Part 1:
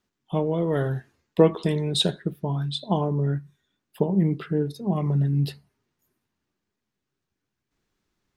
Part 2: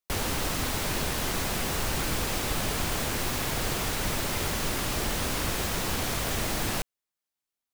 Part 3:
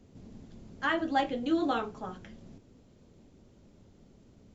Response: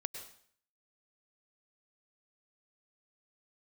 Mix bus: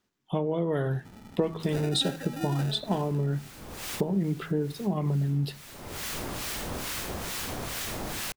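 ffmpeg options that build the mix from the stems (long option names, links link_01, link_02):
-filter_complex "[0:a]bandreject=frequency=80.35:width_type=h:width=4,bandreject=frequency=160.7:width_type=h:width=4,bandreject=frequency=241.05:width_type=h:width=4,acompressor=threshold=-25dB:ratio=5,volume=1.5dB,asplit=2[link_01][link_02];[1:a]acrusher=bits=5:mix=0:aa=0.000001,acrossover=split=1200[link_03][link_04];[link_03]aeval=exprs='val(0)*(1-0.7/2+0.7/2*cos(2*PI*2.3*n/s))':channel_layout=same[link_05];[link_04]aeval=exprs='val(0)*(1-0.7/2-0.7/2*cos(2*PI*2.3*n/s))':channel_layout=same[link_06];[link_05][link_06]amix=inputs=2:normalize=0,adelay=1500,volume=-1.5dB[link_07];[2:a]acompressor=threshold=-40dB:ratio=2.5,acrusher=samples=41:mix=1:aa=0.000001,adelay=900,volume=1.5dB[link_08];[link_02]apad=whole_len=407196[link_09];[link_07][link_09]sidechaincompress=threshold=-47dB:ratio=5:attack=10:release=400[link_10];[link_01][link_10][link_08]amix=inputs=3:normalize=0,lowshelf=frequency=60:gain=-6"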